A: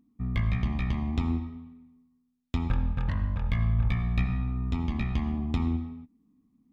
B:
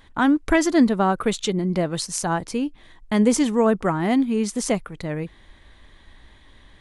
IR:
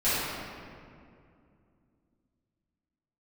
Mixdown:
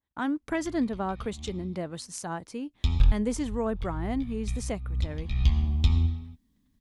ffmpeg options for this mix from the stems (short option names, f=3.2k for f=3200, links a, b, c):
-filter_complex "[0:a]highshelf=f=2.5k:t=q:w=1.5:g=12,asubboost=boost=6.5:cutoff=95,adelay=300,volume=-3.5dB[a];[1:a]agate=range=-22dB:threshold=-44dB:ratio=16:detection=peak,highpass=52,adynamicequalizer=threshold=0.02:dfrequency=1600:dqfactor=0.7:tfrequency=1600:tqfactor=0.7:attack=5:release=100:ratio=0.375:range=2:mode=cutabove:tftype=highshelf,volume=-11dB,asplit=2[b][c];[c]apad=whole_len=309682[d];[a][d]sidechaincompress=threshold=-49dB:ratio=6:attack=24:release=194[e];[e][b]amix=inputs=2:normalize=0"